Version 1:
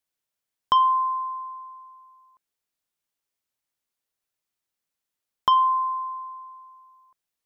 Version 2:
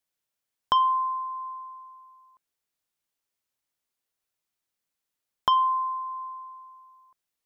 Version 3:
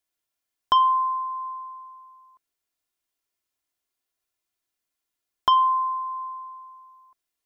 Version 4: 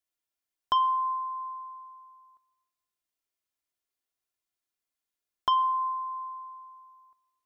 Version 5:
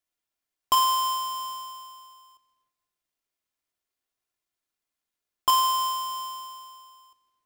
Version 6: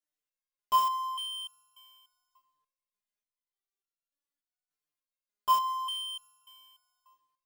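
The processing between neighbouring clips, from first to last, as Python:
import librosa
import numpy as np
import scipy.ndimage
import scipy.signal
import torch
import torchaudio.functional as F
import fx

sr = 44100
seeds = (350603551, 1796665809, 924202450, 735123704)

y1 = fx.dynamic_eq(x, sr, hz=1400.0, q=0.93, threshold_db=-34.0, ratio=4.0, max_db=-4)
y2 = y1 + 0.45 * np.pad(y1, (int(2.9 * sr / 1000.0), 0))[:len(y1)]
y3 = fx.rev_plate(y2, sr, seeds[0], rt60_s=1.1, hf_ratio=0.3, predelay_ms=100, drr_db=18.5)
y3 = F.gain(torch.from_numpy(y3), -6.0).numpy()
y4 = fx.halfwave_hold(y3, sr)
y5 = fx.resonator_held(y4, sr, hz=3.4, low_hz=150.0, high_hz=1400.0)
y5 = F.gain(torch.from_numpy(y5), 4.5).numpy()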